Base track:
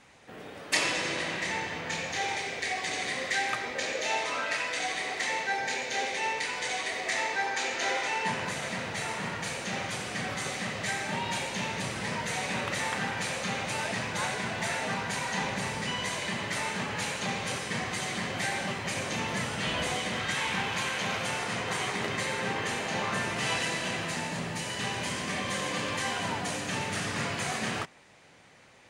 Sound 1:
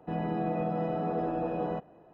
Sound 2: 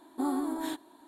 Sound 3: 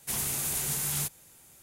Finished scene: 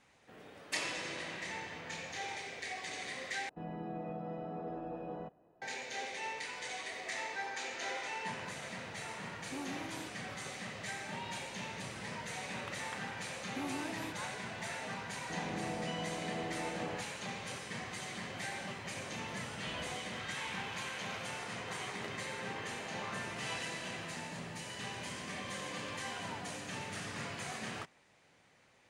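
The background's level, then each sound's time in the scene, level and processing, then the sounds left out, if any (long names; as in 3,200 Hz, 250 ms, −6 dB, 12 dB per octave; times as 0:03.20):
base track −10 dB
0:03.49: overwrite with 1 −11 dB
0:09.33: mix in 2 −13 dB
0:13.37: mix in 2 −10.5 dB
0:15.22: mix in 1 −10 dB
not used: 3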